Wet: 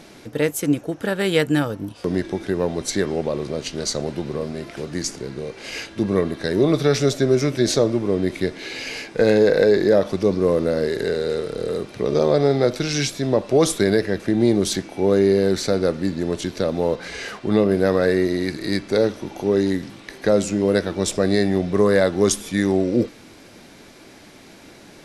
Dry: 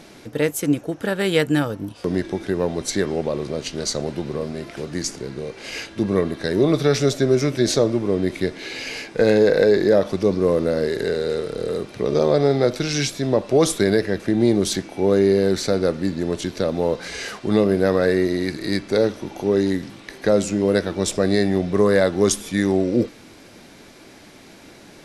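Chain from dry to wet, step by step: 16.95–17.71 tone controls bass 0 dB, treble -5 dB

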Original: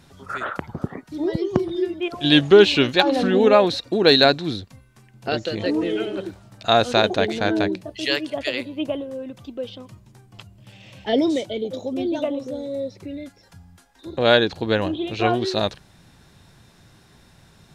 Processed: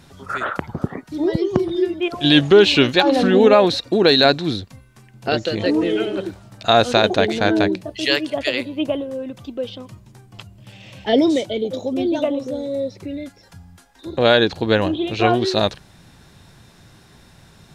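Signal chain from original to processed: maximiser +5.5 dB; gain -1.5 dB

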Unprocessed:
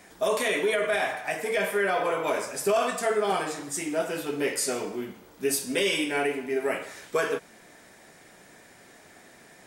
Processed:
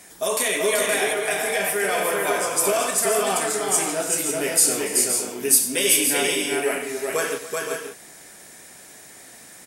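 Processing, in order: bell 11000 Hz +14.5 dB 1.8 oct; tapped delay 92/285/382/520/552 ms -13/-17.5/-3/-8.5/-10 dB

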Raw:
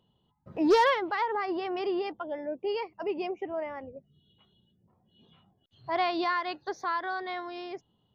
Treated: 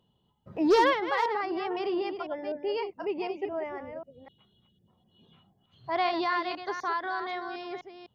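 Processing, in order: reverse delay 0.252 s, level -8 dB

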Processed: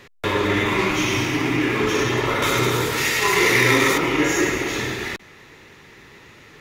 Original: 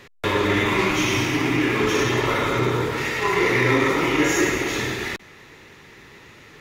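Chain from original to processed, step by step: 2.42–3.98 bell 13000 Hz +15 dB 2.5 oct

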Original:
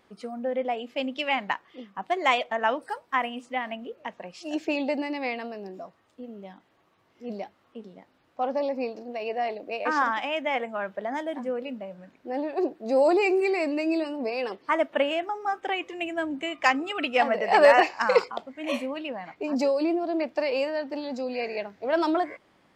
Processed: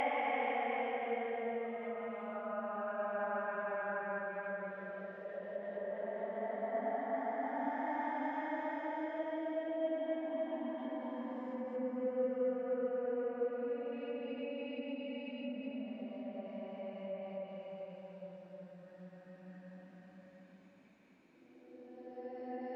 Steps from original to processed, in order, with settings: Paulstretch 13×, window 0.25 s, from 10.53; treble ducked by the level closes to 2100 Hz, closed at -29 dBFS; gain -7.5 dB

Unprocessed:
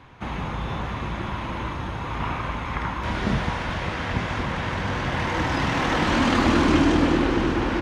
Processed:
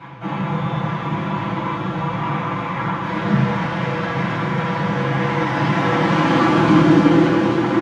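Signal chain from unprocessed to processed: reverse; upward compressor, threshold -22 dBFS; reverse; comb 6 ms; on a send: thin delay 0.272 s, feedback 74%, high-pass 4000 Hz, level -4.5 dB; on the sum: flange 1.5 Hz, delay 0.7 ms, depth 3.4 ms, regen +70%; HPF 110 Hz 24 dB/oct; high shelf 3700 Hz -10.5 dB; shoebox room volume 850 m³, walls furnished, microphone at 7.6 m; gain -1.5 dB

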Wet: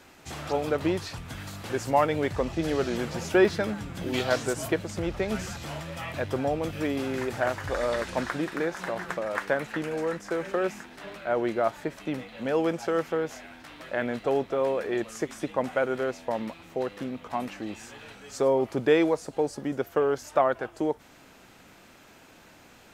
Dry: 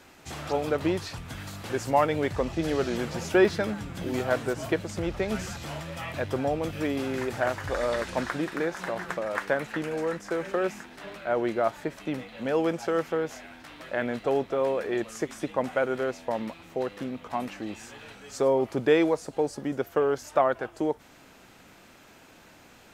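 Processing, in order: 4.12–4.67 bell 2800 Hz -> 12000 Hz +12.5 dB 1.1 oct

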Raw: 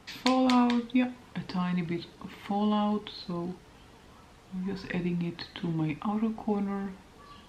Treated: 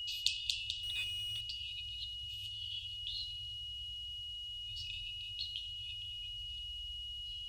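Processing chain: whine 2900 Hz -39 dBFS; on a send: dark delay 0.1 s, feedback 72%, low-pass 1500 Hz, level -5 dB; on the sum: FFT band-reject 110–2500 Hz; 0.83–1.41 power-law curve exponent 0.7

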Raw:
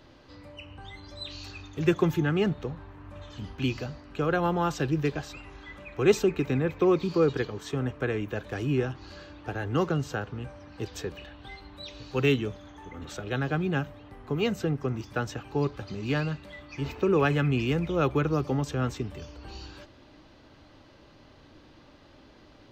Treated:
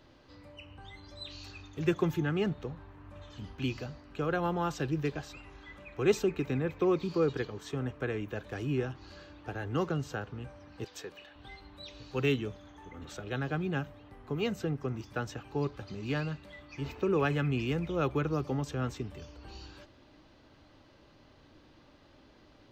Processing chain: 10.84–11.36 HPF 510 Hz 6 dB/oct; gain -5 dB

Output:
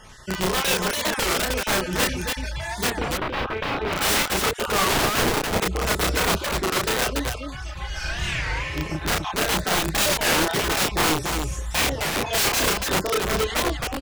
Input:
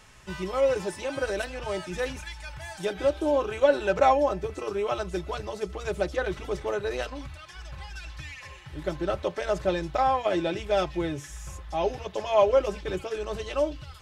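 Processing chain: random spectral dropouts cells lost 35%; 4.93–5.58 tilt -4.5 dB/oct; 7.84–8.54 reverb throw, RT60 1.5 s, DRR -6.5 dB; wrapped overs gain 25.5 dB; 2.89–3.93 air absorption 360 m; loudspeakers at several distances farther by 11 m -1 dB, 98 m -3 dB; record warp 33 1/3 rpm, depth 250 cents; gain +7 dB

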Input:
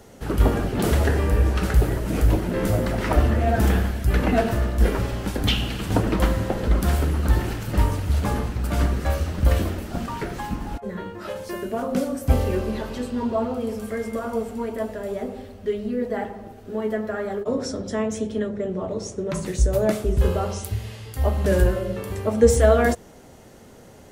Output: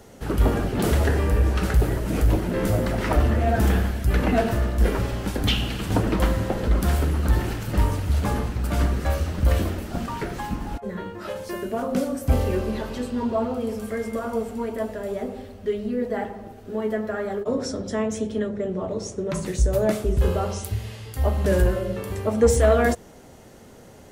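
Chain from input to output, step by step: soft clip -8 dBFS, distortion -22 dB

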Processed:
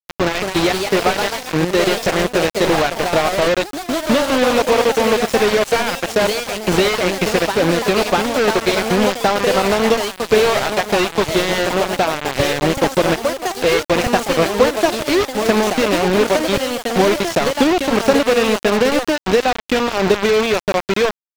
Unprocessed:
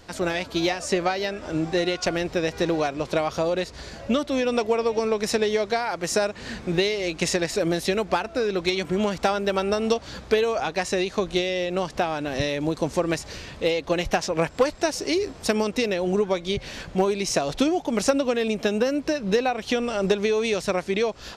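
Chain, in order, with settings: bit-crush 4-bit; echoes that change speed 0.241 s, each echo +2 st, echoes 3, each echo -6 dB; slew limiter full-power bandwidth 230 Hz; gain +6.5 dB

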